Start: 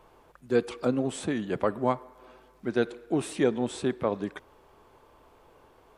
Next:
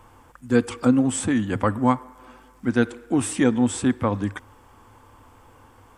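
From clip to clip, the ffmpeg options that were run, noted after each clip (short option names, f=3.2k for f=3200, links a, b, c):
-af "equalizer=f=100:t=o:w=0.33:g=12,equalizer=f=160:t=o:w=0.33:g=-7,equalizer=f=250:t=o:w=0.33:g=5,equalizer=f=400:t=o:w=0.33:g=-12,equalizer=f=630:t=o:w=0.33:g=-10,equalizer=f=2.5k:t=o:w=0.33:g=-3,equalizer=f=4k:t=o:w=0.33:g=-8,equalizer=f=8k:t=o:w=0.33:g=6,volume=8dB"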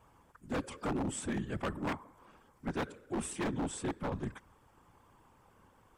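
-af "afftfilt=real='hypot(re,im)*cos(2*PI*random(0))':imag='hypot(re,im)*sin(2*PI*random(1))':win_size=512:overlap=0.75,aeval=exprs='0.0841*(abs(mod(val(0)/0.0841+3,4)-2)-1)':c=same,volume=-6.5dB"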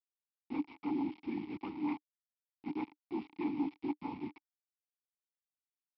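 -filter_complex "[0:a]aresample=11025,acrusher=bits=6:mix=0:aa=0.000001,aresample=44100,asplit=3[a][b][c];[a]bandpass=f=300:t=q:w=8,volume=0dB[d];[b]bandpass=f=870:t=q:w=8,volume=-6dB[e];[c]bandpass=f=2.24k:t=q:w=8,volume=-9dB[f];[d][e][f]amix=inputs=3:normalize=0,volume=7dB"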